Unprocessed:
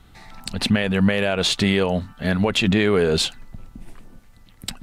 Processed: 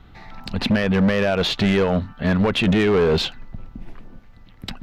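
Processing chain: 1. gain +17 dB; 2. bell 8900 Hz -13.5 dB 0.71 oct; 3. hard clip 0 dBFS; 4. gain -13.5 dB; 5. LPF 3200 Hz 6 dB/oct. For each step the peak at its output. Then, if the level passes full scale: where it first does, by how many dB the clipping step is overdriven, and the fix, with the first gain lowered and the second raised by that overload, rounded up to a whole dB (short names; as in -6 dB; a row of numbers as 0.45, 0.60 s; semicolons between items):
+8.5, +8.5, 0.0, -13.5, -13.5 dBFS; step 1, 8.5 dB; step 1 +8 dB, step 4 -4.5 dB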